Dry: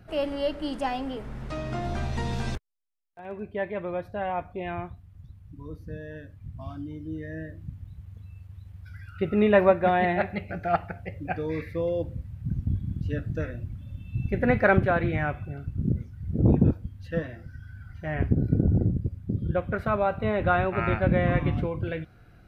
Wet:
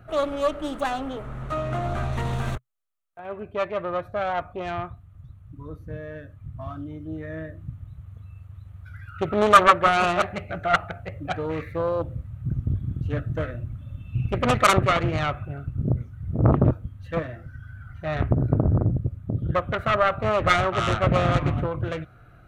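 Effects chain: self-modulated delay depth 0.73 ms; graphic EQ with 31 bands 125 Hz +5 dB, 200 Hz -4 dB, 630 Hz +6 dB, 1.25 kHz +11 dB, 5 kHz -11 dB; trim +1 dB

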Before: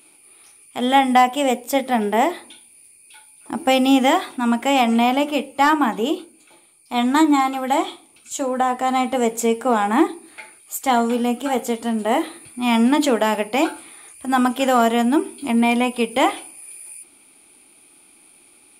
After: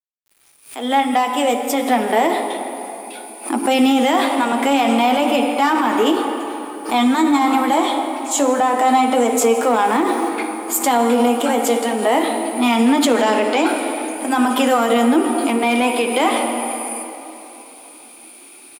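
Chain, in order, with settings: fade-in on the opening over 2.75 s; 9.61–10.28 s: added noise pink -48 dBFS; 13.17–13.66 s: low-pass 8.6 kHz 24 dB/octave; in parallel at -3.5 dB: saturation -20.5 dBFS, distortion -8 dB; on the sum: steep high-pass 240 Hz 48 dB/octave; on a send at -7.5 dB: reverberation RT60 3.4 s, pre-delay 46 ms; on the sum: peak limiter -12 dBFS, peak gain reduction 10.5 dB; delay 166 ms -22 dB; flange 0.54 Hz, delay 7.8 ms, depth 3.4 ms, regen -49%; bit crusher 10-bit; swell ahead of each attack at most 150 dB/s; trim +8.5 dB

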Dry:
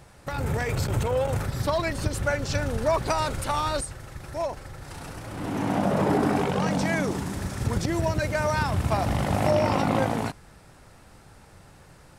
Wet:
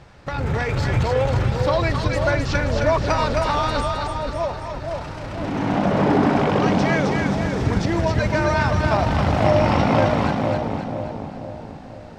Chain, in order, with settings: treble shelf 4 kHz +9.5 dB; in parallel at -10 dB: companded quantiser 4-bit; on the sum: distance through air 200 m; two-band feedback delay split 860 Hz, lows 488 ms, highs 265 ms, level -3.5 dB; trim +2 dB

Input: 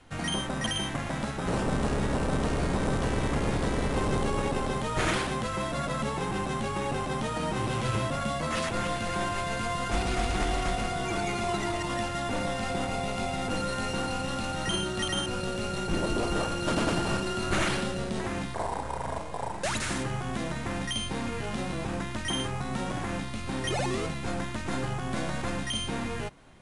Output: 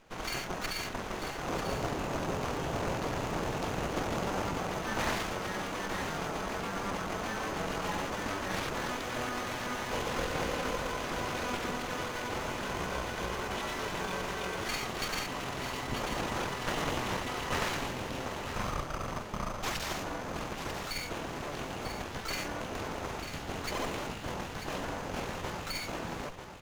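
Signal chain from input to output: graphic EQ with 31 bands 800 Hz +8 dB, 1.25 kHz +8 dB, 4 kHz +8 dB, 10 kHz +8 dB; full-wave rectifier; pitch shift -6 st; on a send: delay 943 ms -8.5 dB; on the sum: sliding maximum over 3 samples; trim -3 dB

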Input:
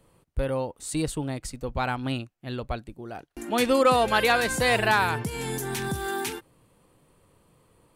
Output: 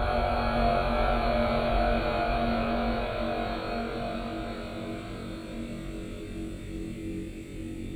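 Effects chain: word length cut 12-bit, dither none; Paulstretch 41×, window 0.25 s, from 2.72 s; ever faster or slower copies 563 ms, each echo -1 st, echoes 3, each echo -6 dB; flutter echo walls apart 3.7 m, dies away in 0.63 s; reverberation, pre-delay 3 ms, DRR 10.5 dB

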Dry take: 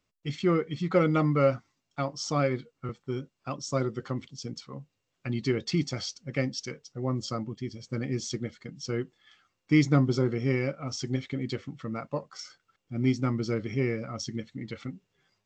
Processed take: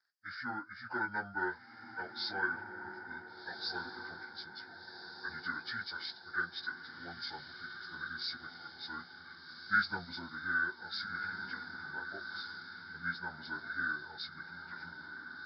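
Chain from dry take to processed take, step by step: frequency-domain pitch shifter -7 st; two resonant band-passes 2.8 kHz, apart 1.6 oct; on a send: echo that smears into a reverb 1499 ms, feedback 47%, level -8 dB; on the sum: trim +11 dB

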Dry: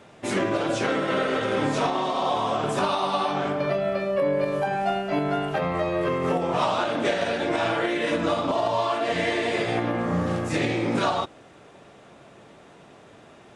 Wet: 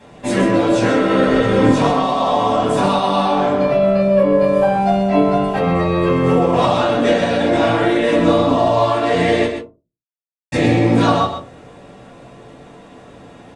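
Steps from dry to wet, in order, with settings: 1.26–1.71 s: bass shelf 120 Hz +11 dB; 9.46–10.52 s: mute; delay 128 ms -8 dB; reverberation RT60 0.30 s, pre-delay 4 ms, DRR -5.5 dB; trim -2 dB

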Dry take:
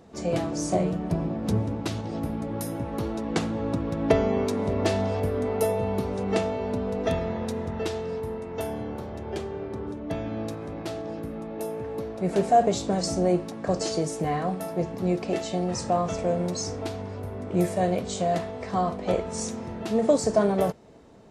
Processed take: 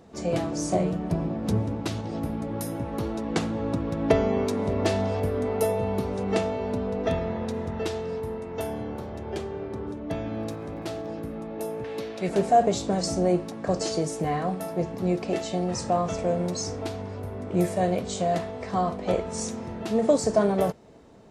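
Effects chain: 6.87–7.54 s: treble shelf 7.5 kHz -10 dB; 10.32–11.07 s: crackle 78 per s -49 dBFS; 11.84–12.29 s: frequency weighting D

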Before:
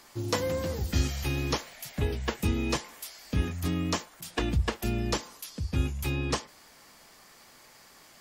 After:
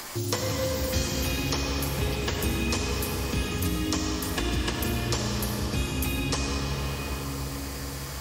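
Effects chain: treble shelf 3.8 kHz +10 dB; reverberation RT60 4.9 s, pre-delay 25 ms, DRR -2 dB; three bands compressed up and down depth 70%; trim -2.5 dB

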